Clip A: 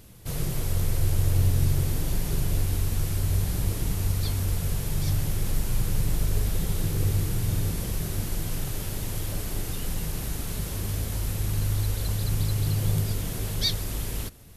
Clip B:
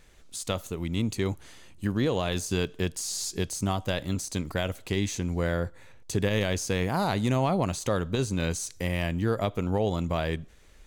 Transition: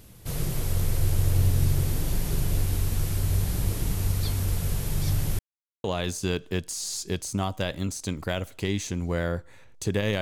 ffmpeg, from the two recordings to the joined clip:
ffmpeg -i cue0.wav -i cue1.wav -filter_complex "[0:a]apad=whole_dur=10.21,atrim=end=10.21,asplit=2[link_01][link_02];[link_01]atrim=end=5.39,asetpts=PTS-STARTPTS,afade=type=out:start_time=5.386:duration=0.004:curve=hsin[link_03];[link_02]atrim=start=5.39:end=5.84,asetpts=PTS-STARTPTS,volume=0[link_04];[1:a]atrim=start=2.12:end=6.49,asetpts=PTS-STARTPTS,afade=type=in:duration=0.004:curve=hsin[link_05];[link_03][link_04][link_05]concat=n=3:v=0:a=1" out.wav

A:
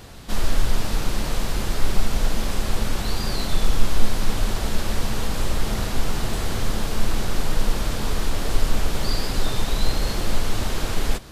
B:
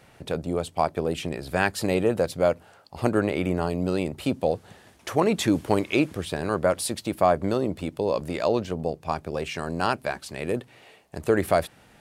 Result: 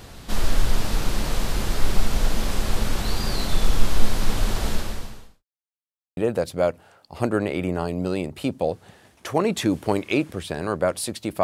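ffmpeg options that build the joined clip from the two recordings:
ffmpeg -i cue0.wav -i cue1.wav -filter_complex "[0:a]apad=whole_dur=11.43,atrim=end=11.43,asplit=2[link_01][link_02];[link_01]atrim=end=5.44,asetpts=PTS-STARTPTS,afade=type=out:start_time=4.7:duration=0.74:curve=qua[link_03];[link_02]atrim=start=5.44:end=6.17,asetpts=PTS-STARTPTS,volume=0[link_04];[1:a]atrim=start=1.99:end=7.25,asetpts=PTS-STARTPTS,afade=type=in:duration=0.004:curve=hsin[link_05];[link_03][link_04][link_05]concat=n=3:v=0:a=1" out.wav

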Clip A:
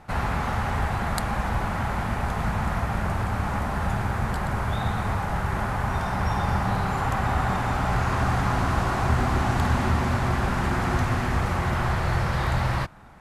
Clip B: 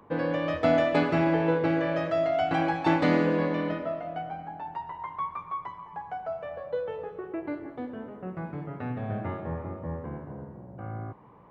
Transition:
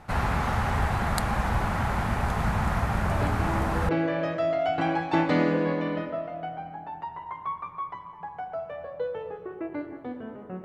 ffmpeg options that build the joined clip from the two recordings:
ffmpeg -i cue0.wav -i cue1.wav -filter_complex "[1:a]asplit=2[link_01][link_02];[0:a]apad=whole_dur=10.64,atrim=end=10.64,atrim=end=3.892[link_03];[link_02]atrim=start=1.618:end=8.37[link_04];[link_01]atrim=start=0.84:end=1.62,asetpts=PTS-STARTPTS,volume=-9dB,afade=type=in:duration=0.004:curve=hsin,afade=type=out:start_time=0.776:duration=0.004:curve=hsin,adelay=3110[link_05];[link_03][link_04]acrossfade=duration=0.004:curve1=hsin:curve2=hsin[link_06];[link_06][link_05]amix=inputs=2:normalize=0" out.wav

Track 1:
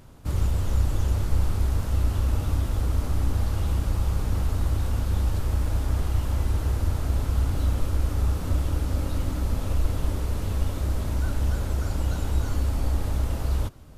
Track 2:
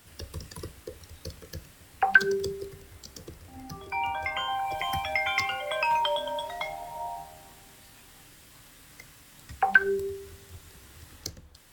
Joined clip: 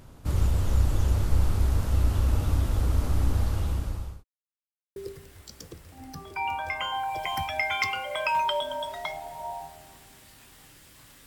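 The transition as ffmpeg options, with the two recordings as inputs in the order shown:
ffmpeg -i cue0.wav -i cue1.wav -filter_complex "[0:a]apad=whole_dur=11.26,atrim=end=11.26,asplit=2[link_01][link_02];[link_01]atrim=end=4.24,asetpts=PTS-STARTPTS,afade=type=out:start_time=3.15:duration=1.09:curve=qsin[link_03];[link_02]atrim=start=4.24:end=4.96,asetpts=PTS-STARTPTS,volume=0[link_04];[1:a]atrim=start=2.52:end=8.82,asetpts=PTS-STARTPTS,afade=type=in:duration=0.004:curve=hsin[link_05];[link_03][link_04][link_05]concat=n=3:v=0:a=1" out.wav

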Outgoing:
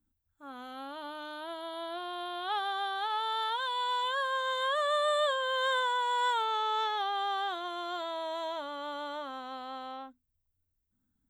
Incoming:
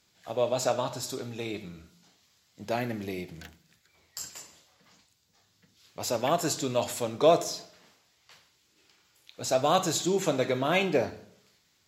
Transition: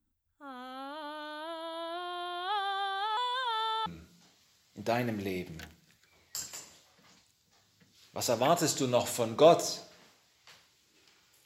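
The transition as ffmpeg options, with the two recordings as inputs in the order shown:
ffmpeg -i cue0.wav -i cue1.wav -filter_complex "[0:a]apad=whole_dur=11.45,atrim=end=11.45,asplit=2[link_01][link_02];[link_01]atrim=end=3.172[link_03];[link_02]atrim=start=3.168:end=3.862,asetpts=PTS-STARTPTS,areverse[link_04];[1:a]atrim=start=1.678:end=9.27[link_05];[link_03][link_04]acrossfade=duration=0.004:curve1=hsin:curve2=hsin[link_06];[link_06][link_05]acrossfade=duration=0.004:curve1=hsin:curve2=hsin" out.wav

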